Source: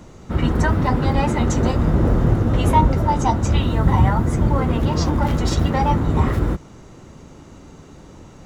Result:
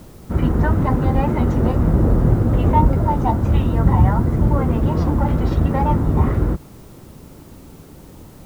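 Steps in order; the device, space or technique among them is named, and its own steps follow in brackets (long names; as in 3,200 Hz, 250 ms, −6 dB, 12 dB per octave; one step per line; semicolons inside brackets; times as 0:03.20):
cassette deck with a dirty head (head-to-tape spacing loss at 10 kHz 36 dB; tape wow and flutter; white noise bed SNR 36 dB)
level +2 dB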